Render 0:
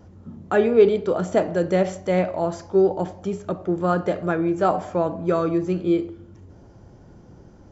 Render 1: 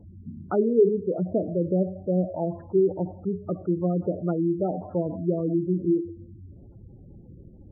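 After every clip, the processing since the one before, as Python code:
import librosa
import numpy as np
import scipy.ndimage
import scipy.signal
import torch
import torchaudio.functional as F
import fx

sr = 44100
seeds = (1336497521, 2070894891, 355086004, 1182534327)

y = fx.env_lowpass_down(x, sr, base_hz=550.0, full_db=-17.0)
y = fx.spec_gate(y, sr, threshold_db=-15, keep='strong')
y = fx.low_shelf(y, sr, hz=320.0, db=8.0)
y = F.gain(torch.from_numpy(y), -6.0).numpy()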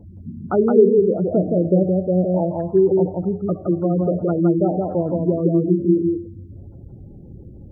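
y = x + 10.0 ** (-3.0 / 20.0) * np.pad(x, (int(168 * sr / 1000.0), 0))[:len(x)]
y = F.gain(torch.from_numpy(y), 5.5).numpy()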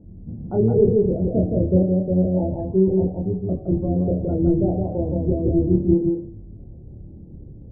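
y = fx.octave_divider(x, sr, octaves=1, level_db=-1.0)
y = scipy.signal.lfilter(np.full(35, 1.0 / 35), 1.0, y)
y = fx.doubler(y, sr, ms=27.0, db=-2.5)
y = F.gain(torch.from_numpy(y), -4.0).numpy()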